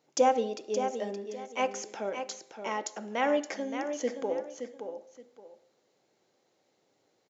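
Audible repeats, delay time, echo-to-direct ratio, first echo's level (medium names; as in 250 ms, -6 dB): 2, 571 ms, -7.5 dB, -8.0 dB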